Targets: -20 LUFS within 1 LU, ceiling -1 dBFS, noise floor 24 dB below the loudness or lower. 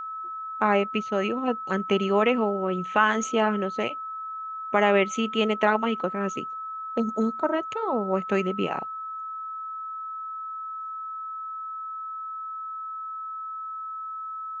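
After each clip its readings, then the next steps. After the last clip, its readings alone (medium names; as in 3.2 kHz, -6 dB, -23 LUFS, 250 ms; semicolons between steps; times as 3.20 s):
steady tone 1.3 kHz; tone level -32 dBFS; loudness -27.5 LUFS; peak level -7.0 dBFS; loudness target -20.0 LUFS
-> band-stop 1.3 kHz, Q 30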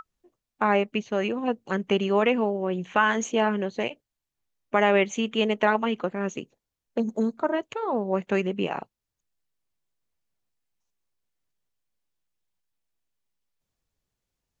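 steady tone not found; loudness -25.5 LUFS; peak level -7.5 dBFS; loudness target -20.0 LUFS
-> trim +5.5 dB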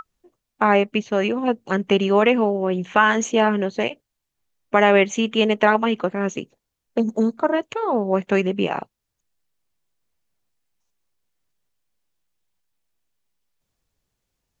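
loudness -20.0 LUFS; peak level -2.0 dBFS; noise floor -80 dBFS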